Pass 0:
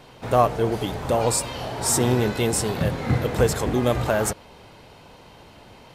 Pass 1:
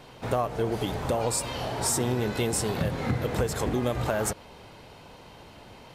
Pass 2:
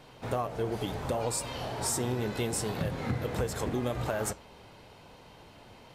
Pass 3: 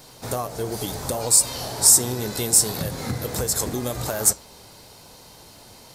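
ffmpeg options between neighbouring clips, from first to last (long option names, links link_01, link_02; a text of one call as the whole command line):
ffmpeg -i in.wav -af "acompressor=threshold=-22dB:ratio=6,volume=-1dB" out.wav
ffmpeg -i in.wav -af "flanger=delay=6.1:depth=4.9:regen=-81:speed=0.74:shape=triangular" out.wav
ffmpeg -i in.wav -af "aexciter=amount=5.4:drive=4.6:freq=4100,volume=3.5dB" out.wav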